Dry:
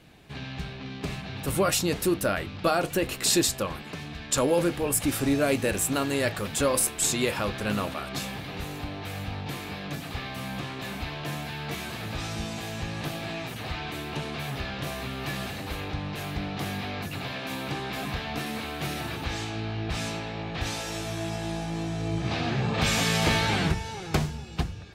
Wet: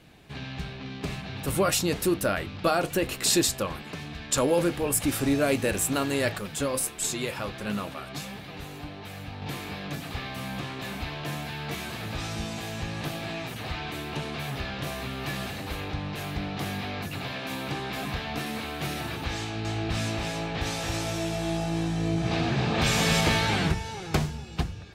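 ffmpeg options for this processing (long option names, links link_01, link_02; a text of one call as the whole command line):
ffmpeg -i in.wav -filter_complex "[0:a]asettb=1/sr,asplit=3[link_01][link_02][link_03];[link_01]atrim=end=6.384[link_04];[link_02]atrim=start=6.38:end=9.42,asetpts=PTS-STARTPTS,afade=type=in:duration=0.004:curve=qsin,afade=type=out:start_time=3.036:duration=0.004:curve=qsin,flanger=delay=4.5:depth=3.7:regen=60:speed=1.5:shape=triangular[link_05];[link_03]atrim=start=9.416[link_06];[link_04][link_05]acrossfade=duration=0.004:curve1=hsin:curve2=qsin[link_07];[link_07][link_06]acrossfade=duration=0.004:curve1=qsin:curve2=hsin,asettb=1/sr,asplit=3[link_08][link_09][link_10];[link_08]atrim=end=19.374[link_11];[link_09]atrim=start=19.37:end=23.21,asetpts=PTS-STARTPTS,afade=type=in:duration=0.004:curve=qsin,afade=type=out:start_time=3.836:duration=0.004:curve=qsin,aecho=1:1:277:0.708,atrim=end_sample=169344[link_12];[link_10]atrim=start=23.206[link_13];[link_11][link_12]acrossfade=duration=0.004:curve1=hsin:curve2=qsin[link_14];[link_14][link_13]acrossfade=duration=0.004:curve1=qsin:curve2=hsin" out.wav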